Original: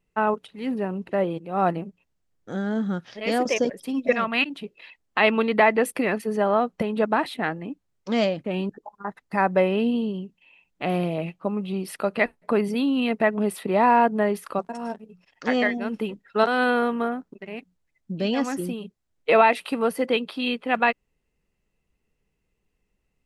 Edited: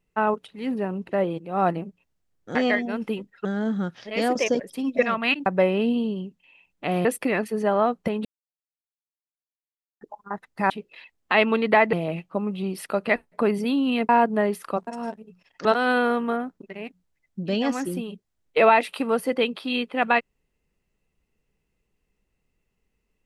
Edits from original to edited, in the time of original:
4.56–5.79 swap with 9.44–11.03
6.99–8.75 mute
13.19–13.91 cut
15.47–16.37 move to 2.55

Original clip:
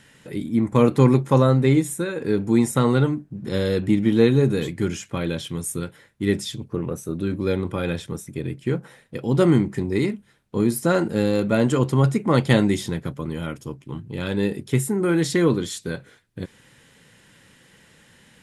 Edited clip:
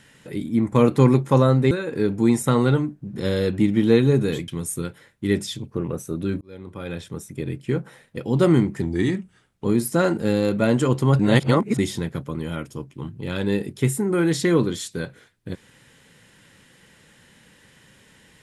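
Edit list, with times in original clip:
1.71–2 cut
4.77–5.46 cut
7.39–8.37 fade in
9.8–10.55 speed 91%
12.1–12.69 reverse

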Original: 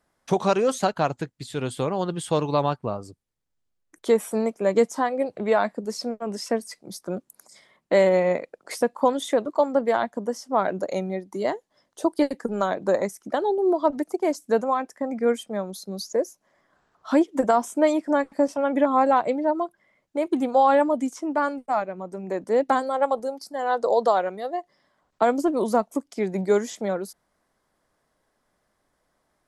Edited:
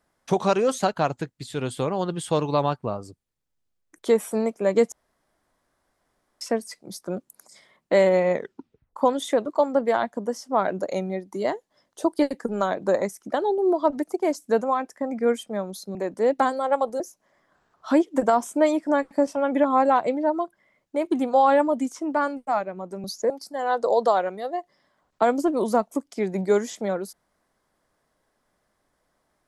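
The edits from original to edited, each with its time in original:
4.92–6.41 room tone
8.33 tape stop 0.63 s
15.95–16.21 swap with 22.25–23.3

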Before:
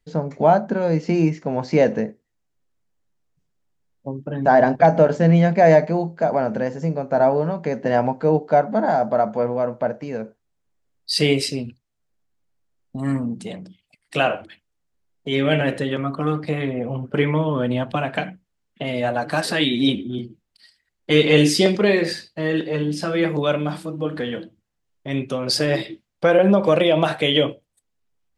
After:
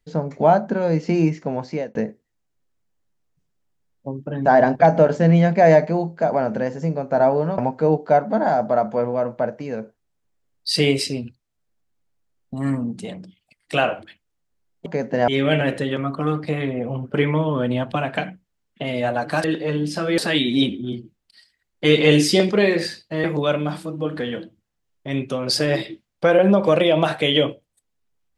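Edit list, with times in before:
1.45–1.95 fade out
7.58–8 move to 15.28
22.5–23.24 move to 19.44

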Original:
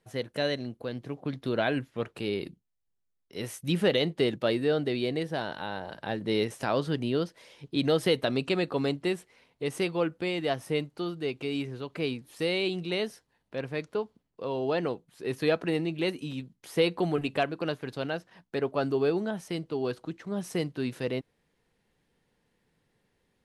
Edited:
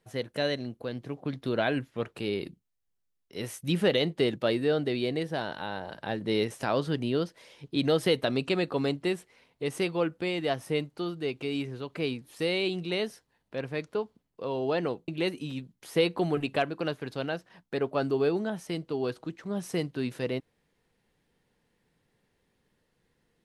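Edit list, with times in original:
15.08–15.89 cut

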